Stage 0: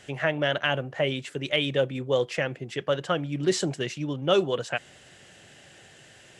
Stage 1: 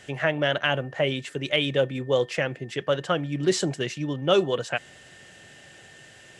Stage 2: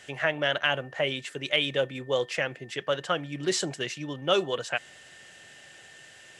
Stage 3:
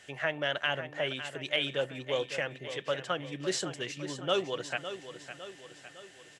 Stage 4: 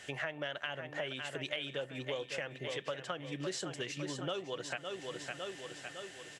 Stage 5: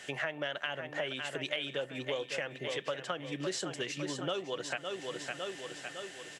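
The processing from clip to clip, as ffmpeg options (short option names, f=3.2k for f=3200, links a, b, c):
-af "aeval=exprs='val(0)+0.002*sin(2*PI*1800*n/s)':c=same,volume=1.5dB"
-af "lowshelf=f=480:g=-9"
-af "aecho=1:1:557|1114|1671|2228|2785:0.282|0.144|0.0733|0.0374|0.0191,volume=-5dB"
-af "acompressor=threshold=-40dB:ratio=6,volume=4dB"
-af "highpass=140,volume=3dB"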